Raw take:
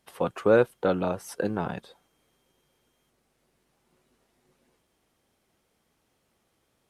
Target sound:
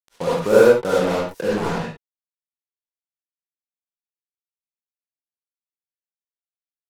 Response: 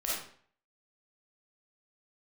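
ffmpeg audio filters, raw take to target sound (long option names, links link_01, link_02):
-filter_complex "[0:a]equalizer=frequency=160:width=6.6:gain=8,acrusher=bits=4:mix=0:aa=0.5[link_01];[1:a]atrim=start_sample=2205,atrim=end_sample=6174,asetrate=33075,aresample=44100[link_02];[link_01][link_02]afir=irnorm=-1:irlink=0,volume=-1dB"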